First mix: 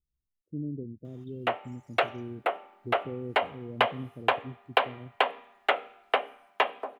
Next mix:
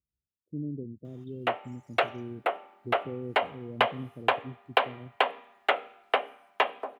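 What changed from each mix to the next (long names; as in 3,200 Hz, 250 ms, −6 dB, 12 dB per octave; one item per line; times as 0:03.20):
speech: add high-pass filter 77 Hz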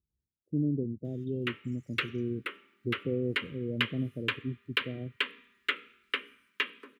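speech +6.0 dB
background: add Butterworth band-reject 720 Hz, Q 0.52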